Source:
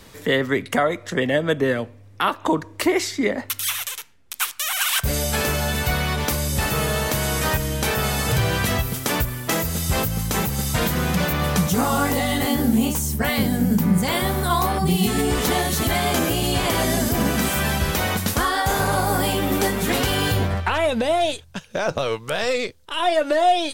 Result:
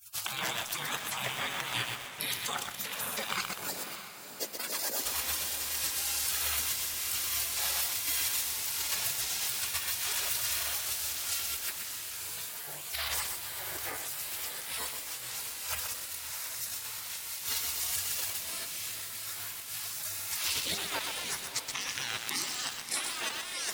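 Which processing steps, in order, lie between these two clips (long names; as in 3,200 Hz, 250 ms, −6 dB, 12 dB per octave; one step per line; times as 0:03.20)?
high-pass filter 210 Hz 24 dB per octave
gate on every frequency bin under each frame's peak −25 dB weak
compressor whose output falls as the input rises −46 dBFS, ratio −1
feedback delay with all-pass diffusion 611 ms, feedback 45%, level −9 dB
feedback echo at a low word length 125 ms, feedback 55%, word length 8 bits, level −3 dB
level +8.5 dB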